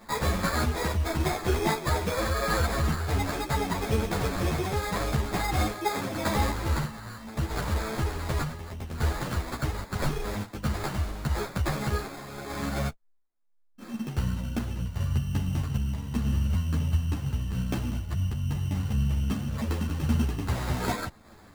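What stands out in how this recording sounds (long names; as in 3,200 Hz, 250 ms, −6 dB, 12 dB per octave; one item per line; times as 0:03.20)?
aliases and images of a low sample rate 2,900 Hz, jitter 0%
tremolo saw down 0.8 Hz, depth 35%
a shimmering, thickened sound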